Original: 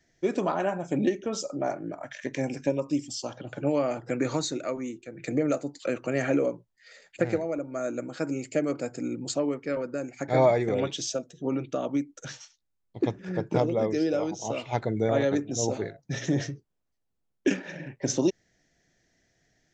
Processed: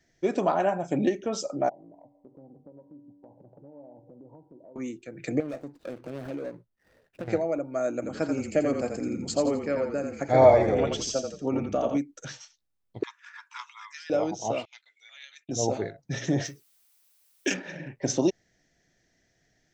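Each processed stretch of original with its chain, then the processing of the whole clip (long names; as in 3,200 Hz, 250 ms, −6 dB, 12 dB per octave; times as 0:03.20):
0:01.69–0:04.76: Chebyshev low-pass filter 990 Hz, order 8 + downward compressor 4 to 1, threshold −38 dBFS + tuned comb filter 96 Hz, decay 2 s, mix 70%
0:05.40–0:07.28: running median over 41 samples + downward compressor 2.5 to 1, threshold −36 dBFS
0:07.93–0:11.98: notch filter 3,700 Hz + echo with shifted repeats 85 ms, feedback 37%, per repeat −31 Hz, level −5.5 dB
0:13.03–0:14.10: Butterworth high-pass 960 Hz 96 dB per octave + parametric band 4,800 Hz −5 dB 0.25 octaves
0:14.65–0:15.49: noise gate −35 dBFS, range −16 dB + four-pole ladder high-pass 2,200 Hz, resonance 40%
0:16.44–0:17.53: spectral tilt +3.5 dB per octave + background noise blue −65 dBFS
whole clip: notch filter 6,900 Hz, Q 23; dynamic equaliser 710 Hz, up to +6 dB, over −42 dBFS, Q 2.6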